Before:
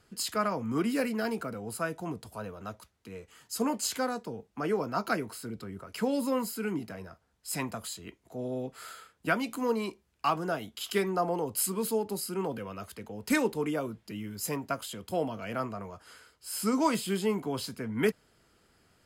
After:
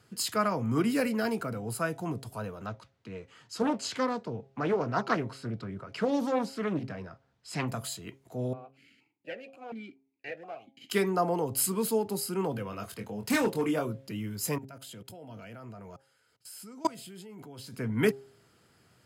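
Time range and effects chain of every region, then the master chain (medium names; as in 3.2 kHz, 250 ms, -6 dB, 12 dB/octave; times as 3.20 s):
2.66–7.68 s: low-pass 4.9 kHz + loudspeaker Doppler distortion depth 0.47 ms
8.53–10.90 s: comb filter that takes the minimum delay 0.43 ms + stepped vowel filter 4.2 Hz
12.70–13.85 s: doubling 24 ms -5.5 dB + hard clipper -23.5 dBFS
14.58–17.74 s: band-stop 1.1 kHz, Q 6.1 + level held to a coarse grid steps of 24 dB
whole clip: high-pass 95 Hz; peaking EQ 120 Hz +9.5 dB 0.54 oct; de-hum 134.9 Hz, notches 6; trim +1.5 dB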